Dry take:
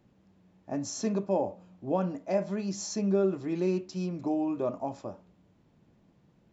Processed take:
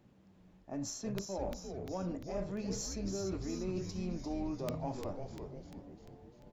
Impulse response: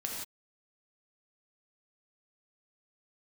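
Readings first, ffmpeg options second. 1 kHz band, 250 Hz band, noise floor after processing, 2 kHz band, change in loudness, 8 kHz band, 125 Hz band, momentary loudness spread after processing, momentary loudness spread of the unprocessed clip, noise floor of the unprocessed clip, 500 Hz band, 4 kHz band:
-8.5 dB, -8.0 dB, -63 dBFS, -6.0 dB, -8.5 dB, n/a, -4.5 dB, 12 LU, 9 LU, -66 dBFS, -9.5 dB, -2.5 dB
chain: -filter_complex "[0:a]areverse,acompressor=threshold=-36dB:ratio=8,areverse,aeval=exprs='0.0447*(cos(1*acos(clip(val(0)/0.0447,-1,1)))-cos(1*PI/2))+0.001*(cos(6*acos(clip(val(0)/0.0447,-1,1)))-cos(6*PI/2))':c=same,aeval=exprs='(mod(23.7*val(0)+1,2)-1)/23.7':c=same,asplit=9[a][b][c][d][e][f][g][h][i];[b]adelay=347,afreqshift=-150,volume=-5.5dB[j];[c]adelay=694,afreqshift=-300,volume=-10.1dB[k];[d]adelay=1041,afreqshift=-450,volume=-14.7dB[l];[e]adelay=1388,afreqshift=-600,volume=-19.2dB[m];[f]adelay=1735,afreqshift=-750,volume=-23.8dB[n];[g]adelay=2082,afreqshift=-900,volume=-28.4dB[o];[h]adelay=2429,afreqshift=-1050,volume=-33dB[p];[i]adelay=2776,afreqshift=-1200,volume=-37.6dB[q];[a][j][k][l][m][n][o][p][q]amix=inputs=9:normalize=0"

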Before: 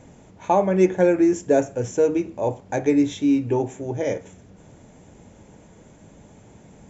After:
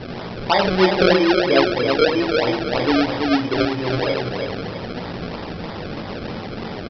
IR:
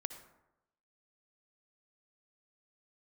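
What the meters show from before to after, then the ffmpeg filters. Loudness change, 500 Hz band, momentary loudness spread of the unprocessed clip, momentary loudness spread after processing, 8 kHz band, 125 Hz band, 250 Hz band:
+2.0 dB, +2.5 dB, 10 LU, 14 LU, n/a, +4.0 dB, +1.5 dB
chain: -filter_complex "[0:a]aeval=exprs='val(0)+0.5*0.0708*sgn(val(0))':c=same,flanger=delay=16.5:depth=6.4:speed=0.39,lowshelf=f=130:g=-9,asplit=2[a][b];[b]adelay=328,lowpass=f=1.1k:p=1,volume=-4dB,asplit=2[c][d];[d]adelay=328,lowpass=f=1.1k:p=1,volume=0.39,asplit=2[e][f];[f]adelay=328,lowpass=f=1.1k:p=1,volume=0.39,asplit=2[g][h];[h]adelay=328,lowpass=f=1.1k:p=1,volume=0.39,asplit=2[i][j];[j]adelay=328,lowpass=f=1.1k:p=1,volume=0.39[k];[c][e][g][i][k]amix=inputs=5:normalize=0[l];[a][l]amix=inputs=2:normalize=0[m];[1:a]atrim=start_sample=2205,asetrate=70560,aresample=44100[n];[m][n]afir=irnorm=-1:irlink=0,aresample=11025,acrusher=samples=8:mix=1:aa=0.000001:lfo=1:lforange=8:lforate=3.1,aresample=44100,volume=8.5dB"

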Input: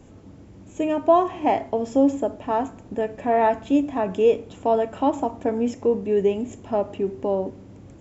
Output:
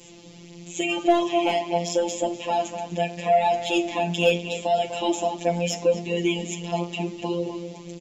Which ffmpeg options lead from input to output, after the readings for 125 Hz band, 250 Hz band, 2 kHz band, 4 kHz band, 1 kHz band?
+5.5 dB, -3.5 dB, +7.0 dB, +14.5 dB, -1.0 dB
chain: -filter_complex "[0:a]highpass=100,aemphasis=mode=reproduction:type=75kf,acrossover=split=150|690|3000[a][b][c][d];[c]alimiter=level_in=1dB:limit=-24dB:level=0:latency=1:release=208,volume=-1dB[e];[a][b][e][d]amix=inputs=4:normalize=0,aexciter=amount=11.6:drive=5.3:freq=2.3k,asplit=2[f][g];[g]adelay=249,lowpass=f=2.9k:p=1,volume=-9dB,asplit=2[h][i];[i]adelay=249,lowpass=f=2.9k:p=1,volume=0.39,asplit=2[j][k];[k]adelay=249,lowpass=f=2.9k:p=1,volume=0.39,asplit=2[l][m];[m]adelay=249,lowpass=f=2.9k:p=1,volume=0.39[n];[f][h][j][l][n]amix=inputs=5:normalize=0,afftfilt=real='hypot(re,im)*cos(PI*b)':imag='0':win_size=1024:overlap=0.75,aeval=exprs='0.376*(cos(1*acos(clip(val(0)/0.376,-1,1)))-cos(1*PI/2))+0.0299*(cos(5*acos(clip(val(0)/0.376,-1,1)))-cos(5*PI/2))+0.00335*(cos(7*acos(clip(val(0)/0.376,-1,1)))-cos(7*PI/2))':c=same,flanger=delay=7.6:depth=4.5:regen=31:speed=0.81:shape=triangular,volume=5.5dB"

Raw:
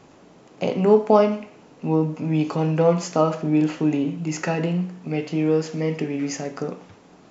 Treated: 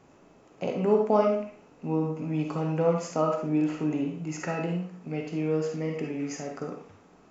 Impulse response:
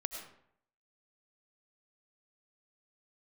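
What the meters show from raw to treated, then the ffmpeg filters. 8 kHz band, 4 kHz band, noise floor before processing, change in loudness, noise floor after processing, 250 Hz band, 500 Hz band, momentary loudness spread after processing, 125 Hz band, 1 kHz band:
n/a, -9.5 dB, -51 dBFS, -6.5 dB, -57 dBFS, -6.5 dB, -6.0 dB, 12 LU, -7.0 dB, -6.0 dB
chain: -filter_complex "[0:a]equalizer=f=4k:t=o:w=0.9:g=-5.5[a];[1:a]atrim=start_sample=2205,asetrate=88200,aresample=44100[b];[a][b]afir=irnorm=-1:irlink=0"

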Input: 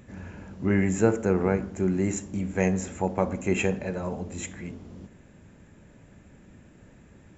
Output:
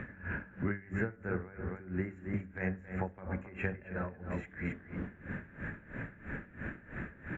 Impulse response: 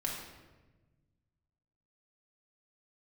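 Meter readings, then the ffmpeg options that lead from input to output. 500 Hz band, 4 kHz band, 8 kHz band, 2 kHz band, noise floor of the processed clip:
-14.0 dB, under -15 dB, n/a, -3.5 dB, -56 dBFS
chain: -filter_complex "[0:a]asplit=2[a][b];[b]adelay=268.2,volume=-9dB,highshelf=f=4k:g=-6.04[c];[a][c]amix=inputs=2:normalize=0,areverse,acompressor=mode=upward:threshold=-34dB:ratio=2.5,areverse,firequalizer=gain_entry='entry(940,0);entry(1600,14);entry(3200,-10);entry(4800,-23);entry(8500,-25)':delay=0.05:min_phase=1,acrossover=split=110[d][e];[d]alimiter=level_in=12.5dB:limit=-24dB:level=0:latency=1,volume=-12.5dB[f];[e]acompressor=threshold=-37dB:ratio=5[g];[f][g]amix=inputs=2:normalize=0,bandreject=f=96.99:t=h:w=4,bandreject=f=193.98:t=h:w=4,bandreject=f=290.97:t=h:w=4,bandreject=f=387.96:t=h:w=4,bandreject=f=484.95:t=h:w=4,bandreject=f=581.94:t=h:w=4,bandreject=f=678.93:t=h:w=4,bandreject=f=775.92:t=h:w=4,bandreject=f=872.91:t=h:w=4,bandreject=f=969.9:t=h:w=4,bandreject=f=1.06689k:t=h:w=4,bandreject=f=1.16388k:t=h:w=4,bandreject=f=1.26087k:t=h:w=4,bandreject=f=1.35786k:t=h:w=4,bandreject=f=1.45485k:t=h:w=4,bandreject=f=1.55184k:t=h:w=4,bandreject=f=1.64883k:t=h:w=4,bandreject=f=1.74582k:t=h:w=4,bandreject=f=1.84281k:t=h:w=4,aeval=exprs='val(0)*pow(10,-19*(0.5-0.5*cos(2*PI*3*n/s))/20)':c=same,volume=4.5dB"

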